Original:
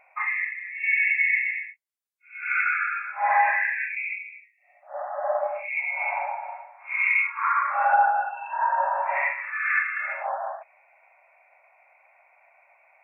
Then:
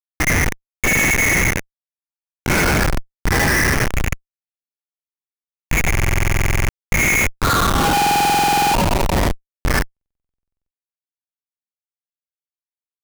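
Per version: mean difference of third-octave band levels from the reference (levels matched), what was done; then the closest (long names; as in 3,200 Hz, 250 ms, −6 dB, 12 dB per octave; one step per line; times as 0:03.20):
22.5 dB: high-pass filter sweep 1,800 Hz → 570 Hz, 0:07.20–0:08.59
comparator with hysteresis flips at −17.5 dBFS
buffer that repeats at 0:05.90/0:07.95/0:09.92, samples 2,048, times 16
level +7 dB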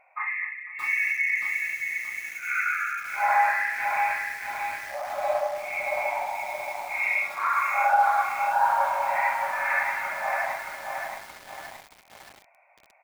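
12.5 dB: high-shelf EQ 2,200 Hz −7 dB
on a send: repeating echo 248 ms, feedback 56%, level −17.5 dB
on the sum: feedback echo at a low word length 624 ms, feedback 55%, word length 7 bits, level −4 dB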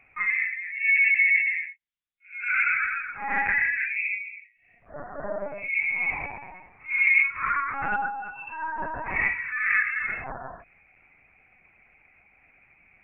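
5.5 dB: high-shelf EQ 2,100 Hz +7 dB
linear-prediction vocoder at 8 kHz pitch kept
parametric band 840 Hz −11.5 dB 1.1 octaves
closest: third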